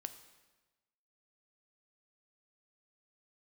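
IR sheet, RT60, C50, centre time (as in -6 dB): 1.2 s, 12.0 dB, 10 ms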